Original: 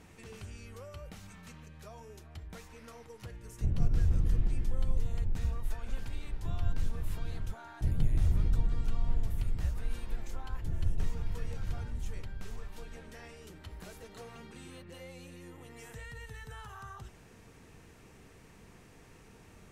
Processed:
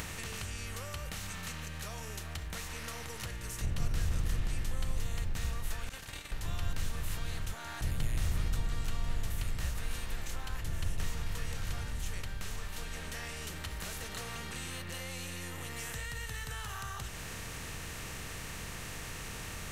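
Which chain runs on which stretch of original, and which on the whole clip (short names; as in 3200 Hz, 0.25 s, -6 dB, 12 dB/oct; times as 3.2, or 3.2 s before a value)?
5.89–6.32 expander -27 dBFS + HPF 460 Hz 6 dB/oct
whole clip: per-bin compression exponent 0.6; tilt shelf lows -7 dB, about 1300 Hz; upward compressor, threshold -34 dBFS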